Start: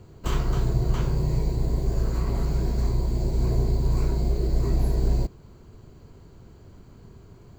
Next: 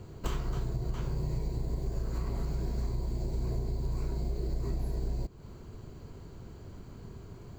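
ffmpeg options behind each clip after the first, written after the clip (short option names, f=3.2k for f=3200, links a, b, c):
-af "acompressor=threshold=-31dB:ratio=6,volume=1.5dB"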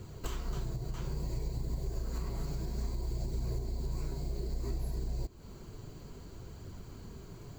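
-af "highshelf=f=3.6k:g=8,alimiter=level_in=2dB:limit=-24dB:level=0:latency=1:release=356,volume=-2dB,flanger=delay=0.5:depth=6.8:regen=-47:speed=0.6:shape=triangular,volume=3dB"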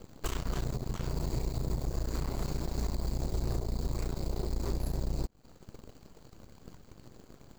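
-af "aeval=exprs='0.0562*(cos(1*acos(clip(val(0)/0.0562,-1,1)))-cos(1*PI/2))+0.00891*(cos(7*acos(clip(val(0)/0.0562,-1,1)))-cos(7*PI/2))+0.00631*(cos(8*acos(clip(val(0)/0.0562,-1,1)))-cos(8*PI/2))':c=same,volume=2dB"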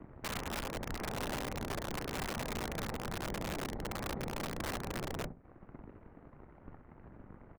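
-filter_complex "[0:a]highpass=f=190:t=q:w=0.5412,highpass=f=190:t=q:w=1.307,lowpass=f=2.2k:t=q:w=0.5176,lowpass=f=2.2k:t=q:w=0.7071,lowpass=f=2.2k:t=q:w=1.932,afreqshift=-180,asplit=2[a][b];[b]adelay=64,lowpass=f=1.5k:p=1,volume=-8dB,asplit=2[c][d];[d]adelay=64,lowpass=f=1.5k:p=1,volume=0.26,asplit=2[e][f];[f]adelay=64,lowpass=f=1.5k:p=1,volume=0.26[g];[a][c][e][g]amix=inputs=4:normalize=0,aeval=exprs='(mod(59.6*val(0)+1,2)-1)/59.6':c=same,volume=3.5dB"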